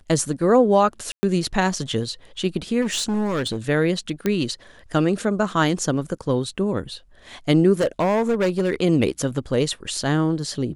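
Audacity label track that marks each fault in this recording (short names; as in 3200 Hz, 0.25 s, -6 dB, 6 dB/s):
1.120000	1.230000	gap 0.11 s
2.810000	3.580000	clipped -19.5 dBFS
4.260000	4.260000	pop -9 dBFS
7.800000	8.810000	clipped -15.5 dBFS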